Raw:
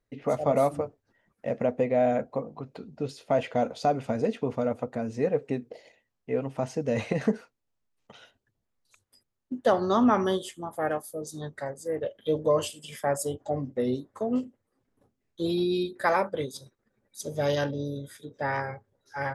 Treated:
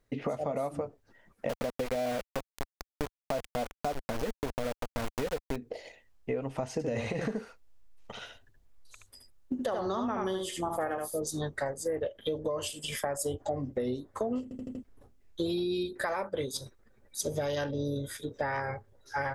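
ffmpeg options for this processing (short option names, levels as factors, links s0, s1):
-filter_complex "[0:a]asettb=1/sr,asplit=3[s0][s1][s2];[s0]atrim=end=1.494[s3];[s1]atrim=start=1.49:end=5.56,asetpts=PTS-STARTPTS,afade=t=in:d=0.004:c=qsin,afade=t=out:st=4.066:d=0.004:c=qsin,aeval=exprs='val(0)*gte(abs(val(0)),0.0398)':c=same[s4];[s2]atrim=start=5.556[s5];[s3][s4]acrossfade=d=0.004:c1=hsin:c2=qsin[s6];[s6][s5]acrossfade=d=0.004:c1=qsin:c2=hsin,asettb=1/sr,asplit=3[s7][s8][s9];[s7]atrim=end=6.724[s10];[s8]atrim=start=6.72:end=11.2,asetpts=PTS-STARTPTS,afade=t=in:d=0.004:c=qsin,afade=t=out:st=4.476:d=0.004:c=qsin,aecho=1:1:74:0.562,atrim=end_sample=197568[s11];[s9]atrim=start=11.196[s12];[s10][s11]acrossfade=d=0.004:c1=hsin:c2=qsin[s13];[s13][s12]acrossfade=d=0.004:c1=qsin:c2=hsin,asplit=6[s14][s15][s16][s17][s18][s19];[s14]atrim=end=14.512[s20];[s15]atrim=start=14.428:end=14.512[s21];[s16]atrim=start=14.428:end=14.512[s22];[s17]atrim=start=14.428:end=14.512[s23];[s18]atrim=start=14.428:end=14.512[s24];[s19]atrim=start=14.828[s25];[s20][s21]acrossfade=d=0.004:c1=hsin:c2=hsin[s26];[s26][s22]acrossfade=d=0.004:c1=hsin:c2=hsin[s27];[s27][s23]acrossfade=d=0.004:c1=hsin:c2=hsin[s28];[s28][s24]acrossfade=d=0.004:c1=hsin:c2=hsin[s29];[s29][s25]acrossfade=d=0.004:c1=hsin:c2=hsin,asubboost=boost=6.5:cutoff=58,alimiter=limit=0.0708:level=0:latency=1:release=309,acompressor=threshold=0.0158:ratio=6,volume=2.24"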